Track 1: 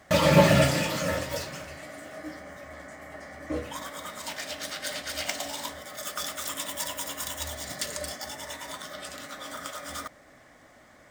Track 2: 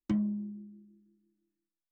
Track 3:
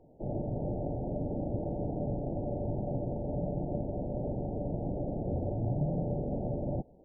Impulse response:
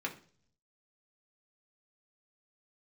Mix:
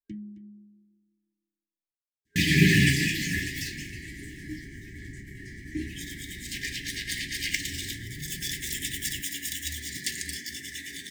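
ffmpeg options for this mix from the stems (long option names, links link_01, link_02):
-filter_complex "[0:a]agate=range=-20dB:threshold=-44dB:ratio=16:detection=peak,adynamicequalizer=threshold=0.00631:dfrequency=2000:dqfactor=2:tfrequency=2000:tqfactor=2:attack=5:release=100:ratio=0.375:range=2.5:mode=boostabove:tftype=bell,adelay=2250,volume=1dB[link_01];[1:a]volume=-10dB,asplit=2[link_02][link_03];[link_03]volume=-15dB[link_04];[2:a]equalizer=frequency=66:width_type=o:width=1:gain=9.5,adelay=2400,volume=-12dB[link_05];[link_04]aecho=0:1:266:1[link_06];[link_01][link_02][link_05][link_06]amix=inputs=4:normalize=0,afftfilt=real='re*(1-between(b*sr/4096,410,1600))':imag='im*(1-between(b*sr/4096,410,1600))':win_size=4096:overlap=0.75"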